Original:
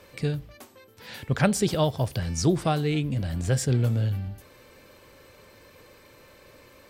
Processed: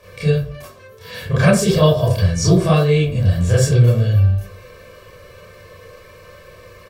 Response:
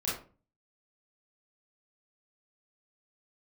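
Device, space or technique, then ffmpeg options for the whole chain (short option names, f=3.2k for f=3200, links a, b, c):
microphone above a desk: -filter_complex "[0:a]aecho=1:1:1.8:0.67[a];[1:a]atrim=start_sample=2205[b];[a][b]afir=irnorm=-1:irlink=0,volume=2dB"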